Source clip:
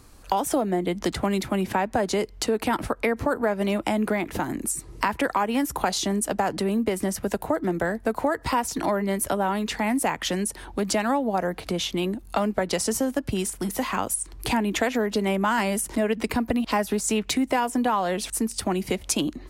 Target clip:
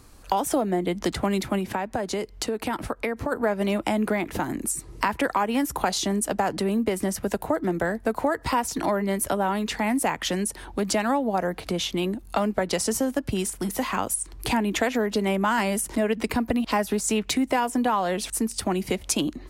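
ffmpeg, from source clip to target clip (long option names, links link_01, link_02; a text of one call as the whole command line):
ffmpeg -i in.wav -filter_complex "[0:a]asettb=1/sr,asplit=3[link_01][link_02][link_03];[link_01]atrim=end=1.584[link_04];[link_02]atrim=start=1.58:end=3.32,asetpts=PTS-STARTPTS,afade=type=in:duration=0.004:curve=qsin,afade=type=out:start_time=1.736:duration=0.004:curve=qsin,acompressor=threshold=-27dB:ratio=2[link_05];[link_03]atrim=start=3.316[link_06];[link_04][link_05]acrossfade=duration=0.004:curve1=hsin:curve2=qsin[link_07];[link_07][link_06]acrossfade=duration=0.004:curve1=qsin:curve2=hsin" out.wav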